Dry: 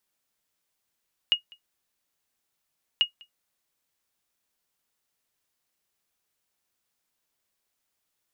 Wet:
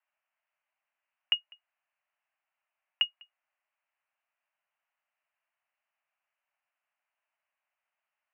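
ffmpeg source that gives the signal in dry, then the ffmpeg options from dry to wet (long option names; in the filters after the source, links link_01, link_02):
-f lavfi -i "aevalsrc='0.251*(sin(2*PI*2870*mod(t,1.69))*exp(-6.91*mod(t,1.69)/0.11)+0.0422*sin(2*PI*2870*max(mod(t,1.69)-0.2,0))*exp(-6.91*max(mod(t,1.69)-0.2,0)/0.11))':duration=3.38:sample_rate=44100"
-af "asuperpass=centerf=1300:order=20:qfactor=0.56"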